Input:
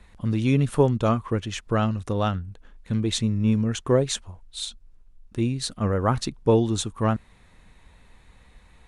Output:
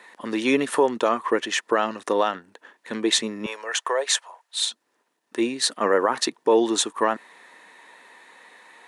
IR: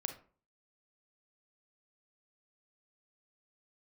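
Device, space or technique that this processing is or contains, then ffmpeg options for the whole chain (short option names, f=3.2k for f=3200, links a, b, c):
laptop speaker: -filter_complex "[0:a]highpass=f=320:w=0.5412,highpass=f=320:w=1.3066,equalizer=f=960:t=o:w=0.3:g=6,equalizer=f=1.8k:t=o:w=0.21:g=10,alimiter=limit=-16dB:level=0:latency=1:release=96,asettb=1/sr,asplit=3[a][b][c];[a]atrim=end=3.464[d];[b]atrim=start=3.46:end=4.6,asetpts=PTS-STARTPTS,afade=t=in:d=0.004:c=qsin,afade=t=out:st=1.136:d=0.004:c=qsin,highpass=f=570:w=0.5412,highpass=f=570:w=1.3066[e];[c]atrim=start=4.596[f];[d][e]acrossfade=d=0.004:c1=hsin:c2=qsin[g];[g][f]acrossfade=d=0.004:c1=qsin:c2=hsin,volume=7.5dB"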